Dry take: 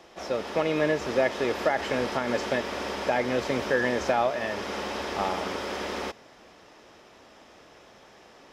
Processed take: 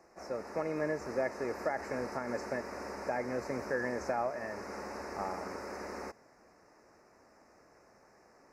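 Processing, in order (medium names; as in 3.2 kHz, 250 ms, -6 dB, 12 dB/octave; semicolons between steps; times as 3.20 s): Butterworth band-stop 3.3 kHz, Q 1.1; trim -9 dB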